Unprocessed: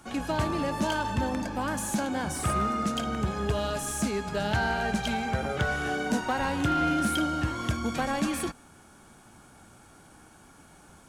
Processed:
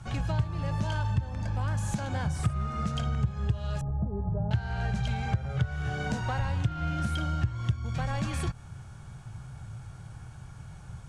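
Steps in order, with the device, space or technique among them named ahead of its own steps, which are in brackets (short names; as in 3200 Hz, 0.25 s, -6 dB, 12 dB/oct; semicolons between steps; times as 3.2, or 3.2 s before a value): jukebox (LPF 7500 Hz 12 dB/oct; resonant low shelf 180 Hz +13 dB, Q 3; compressor 4:1, threshold -27 dBFS, peak gain reduction 18.5 dB); 3.81–4.51 inverse Chebyshev low-pass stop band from 2300 Hz, stop band 50 dB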